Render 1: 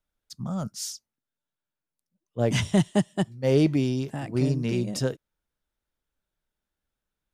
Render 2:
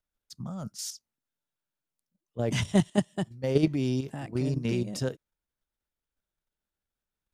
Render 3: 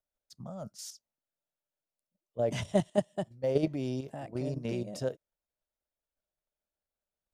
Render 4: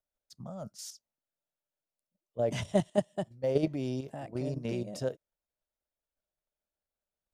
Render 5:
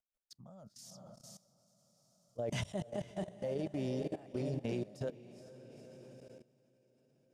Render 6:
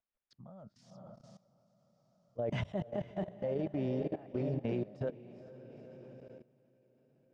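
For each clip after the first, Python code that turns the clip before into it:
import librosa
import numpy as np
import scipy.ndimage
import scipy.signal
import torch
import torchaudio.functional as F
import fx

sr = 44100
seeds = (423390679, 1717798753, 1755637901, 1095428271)

y1 = fx.level_steps(x, sr, step_db=9)
y2 = fx.peak_eq(y1, sr, hz=610.0, db=12.0, octaves=0.77)
y2 = y2 * librosa.db_to_amplitude(-7.5)
y3 = y2
y4 = fx.echo_diffused(y3, sr, ms=480, feedback_pct=50, wet_db=-9)
y4 = fx.level_steps(y4, sr, step_db=18)
y5 = scipy.signal.sosfilt(scipy.signal.butter(2, 2300.0, 'lowpass', fs=sr, output='sos'), y4)
y5 = y5 * librosa.db_to_amplitude(2.5)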